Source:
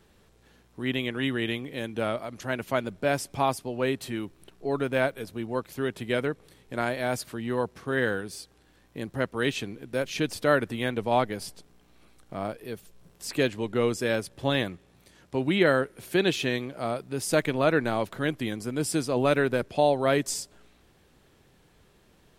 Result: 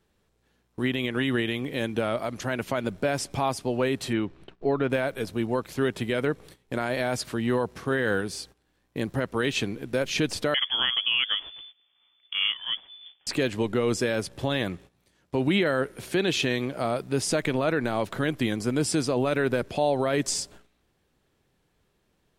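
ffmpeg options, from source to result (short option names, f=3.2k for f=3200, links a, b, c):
-filter_complex "[0:a]asettb=1/sr,asplit=3[a][b][c];[a]atrim=end=4.134[d];[b]atrim=start=4.13:end=4.9,asetpts=PTS-STARTPTS,afade=t=in:d=0.004:c=qsin,afade=t=out:st=0.766:d=0.004:c=qsin,lowpass=3.4k[e];[c]atrim=start=4.896[f];[d][e]acrossfade=d=0.004:c1=hsin:c2=qsin[g];[g][f]acrossfade=d=0.004:c1=qsin:c2=hsin,asettb=1/sr,asplit=3[h][i][j];[h]atrim=end=10.544[k];[i]atrim=start=10.54:end=13.27,asetpts=PTS-STARTPTS,afade=t=in:d=0.004:c=qsin,afade=t=out:st=2.726:d=0.004:c=qsin,lowpass=f=3k:t=q:w=0.5098,lowpass=f=3k:t=q:w=0.6013,lowpass=f=3k:t=q:w=0.9,lowpass=f=3k:t=q:w=2.563,afreqshift=-3500[l];[j]atrim=start=13.266[m];[k][l]acrossfade=d=0.004:c1=hsin:c2=qsin[n];[n][m]acrossfade=d=0.004:c1=qsin:c2=hsin,alimiter=limit=-20.5dB:level=0:latency=1:release=79,acrossover=split=9200[o][p];[p]acompressor=threshold=-58dB:ratio=4:attack=1:release=60[q];[o][q]amix=inputs=2:normalize=0,agate=range=-16dB:threshold=-52dB:ratio=16:detection=peak,volume=6dB"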